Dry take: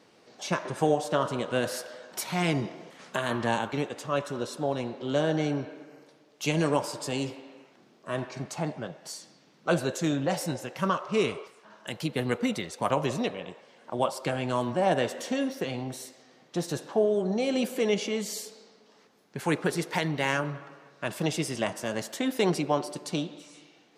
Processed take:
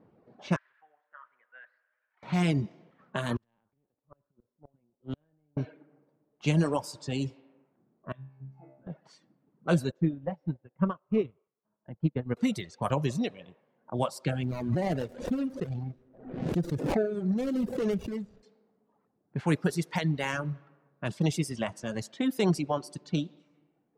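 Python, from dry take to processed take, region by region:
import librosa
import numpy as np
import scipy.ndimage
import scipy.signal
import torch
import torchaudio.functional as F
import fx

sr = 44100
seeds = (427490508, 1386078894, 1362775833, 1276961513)

y = fx.chain(x, sr, fx.crossing_spikes(level_db=-27.5),
    fx.ladder_bandpass(hz=1900.0, resonance_pct=55),
    fx.air_absorb(metres=260.0), at=(0.56, 2.23))
y = fx.chain(y, sr, fx.law_mismatch(coded='A'),
    fx.transient(attack_db=-11, sustain_db=9),
    fx.gate_flip(shuts_db=-25.0, range_db=-34), at=(3.36, 5.57))
y = fx.chain(y, sr, fx.air_absorb(metres=82.0),
    fx.comb_fb(f0_hz=67.0, decay_s=1.3, harmonics='all', damping=0.0, mix_pct=100), at=(8.12, 8.87))
y = fx.chain(y, sr, fx.transient(attack_db=5, sustain_db=-6),
    fx.spacing_loss(db_at_10k=44),
    fx.upward_expand(threshold_db=-45.0, expansion=1.5), at=(9.91, 12.37))
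y = fx.chain(y, sr, fx.median_filter(points=41),
    fx.pre_swell(db_per_s=49.0), at=(14.43, 18.43))
y = fx.env_lowpass(y, sr, base_hz=950.0, full_db=-26.5)
y = fx.dereverb_blind(y, sr, rt60_s=1.8)
y = fx.bass_treble(y, sr, bass_db=11, treble_db=1)
y = y * 10.0 ** (-3.5 / 20.0)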